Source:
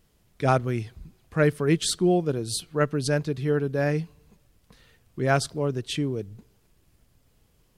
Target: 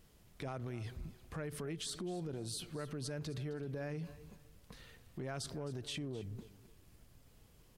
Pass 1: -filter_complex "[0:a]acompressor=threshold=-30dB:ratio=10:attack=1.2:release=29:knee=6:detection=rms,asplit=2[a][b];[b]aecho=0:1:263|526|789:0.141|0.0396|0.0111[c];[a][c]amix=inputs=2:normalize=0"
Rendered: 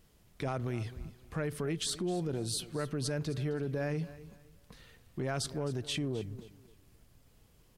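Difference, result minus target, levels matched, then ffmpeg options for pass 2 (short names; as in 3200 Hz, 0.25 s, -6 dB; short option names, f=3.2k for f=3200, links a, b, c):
compressor: peak gain reduction -7.5 dB
-filter_complex "[0:a]acompressor=threshold=-38.5dB:ratio=10:attack=1.2:release=29:knee=6:detection=rms,asplit=2[a][b];[b]aecho=0:1:263|526|789:0.141|0.0396|0.0111[c];[a][c]amix=inputs=2:normalize=0"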